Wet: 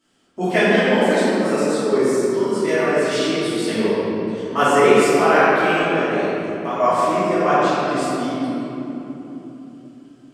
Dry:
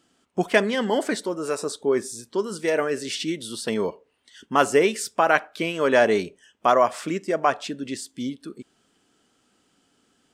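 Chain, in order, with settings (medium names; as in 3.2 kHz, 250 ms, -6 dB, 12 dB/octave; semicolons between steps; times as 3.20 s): 5.80–6.80 s: compression 6:1, threshold -26 dBFS, peak gain reduction 13 dB; reverberation RT60 3.4 s, pre-delay 3 ms, DRR -15 dB; trim -8.5 dB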